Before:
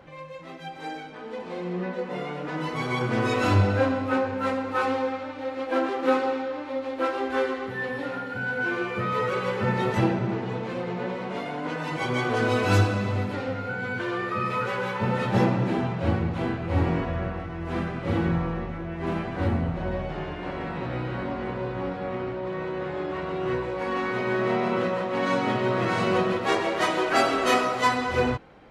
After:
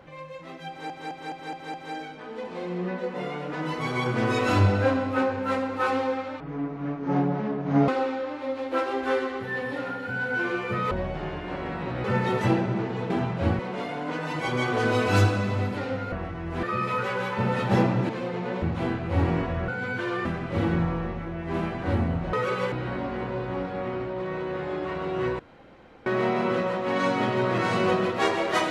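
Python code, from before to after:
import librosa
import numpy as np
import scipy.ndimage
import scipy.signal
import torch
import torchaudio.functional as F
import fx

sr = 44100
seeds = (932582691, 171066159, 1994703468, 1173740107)

y = fx.edit(x, sr, fx.stutter(start_s=0.69, slice_s=0.21, count=6),
    fx.speed_span(start_s=5.35, length_s=0.8, speed=0.54),
    fx.swap(start_s=9.18, length_s=0.39, other_s=19.86, other_length_s=1.13),
    fx.swap(start_s=10.63, length_s=0.53, other_s=15.72, other_length_s=0.49),
    fx.swap(start_s=13.69, length_s=0.57, other_s=17.27, other_length_s=0.51),
    fx.room_tone_fill(start_s=23.66, length_s=0.67), tone=tone)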